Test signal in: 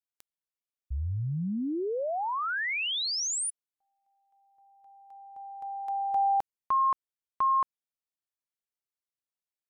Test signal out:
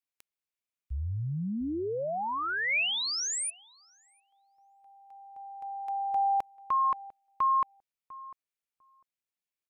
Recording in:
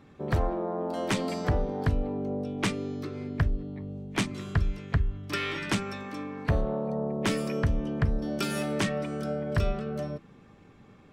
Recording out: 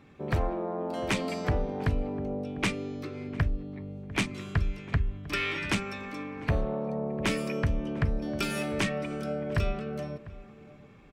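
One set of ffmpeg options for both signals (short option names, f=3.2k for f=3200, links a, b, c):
-filter_complex "[0:a]equalizer=f=2.4k:t=o:w=0.52:g=6,asplit=2[a][b];[b]adelay=699,lowpass=f=1.2k:p=1,volume=-17dB,asplit=2[c][d];[d]adelay=699,lowpass=f=1.2k:p=1,volume=0.16[e];[a][c][e]amix=inputs=3:normalize=0,volume=-1.5dB"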